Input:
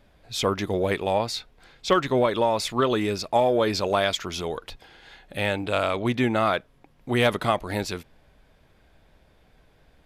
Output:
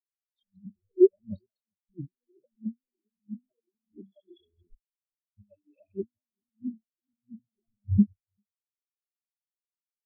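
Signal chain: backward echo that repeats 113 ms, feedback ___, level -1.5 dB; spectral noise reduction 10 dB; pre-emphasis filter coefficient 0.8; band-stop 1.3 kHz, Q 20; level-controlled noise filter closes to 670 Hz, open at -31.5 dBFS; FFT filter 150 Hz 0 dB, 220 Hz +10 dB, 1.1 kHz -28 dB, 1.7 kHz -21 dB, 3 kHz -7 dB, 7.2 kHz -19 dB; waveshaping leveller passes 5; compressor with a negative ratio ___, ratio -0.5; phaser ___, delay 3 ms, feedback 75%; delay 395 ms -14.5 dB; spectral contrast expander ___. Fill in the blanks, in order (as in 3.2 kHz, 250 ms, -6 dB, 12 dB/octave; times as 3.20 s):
64%, -27 dBFS, 1.5 Hz, 4:1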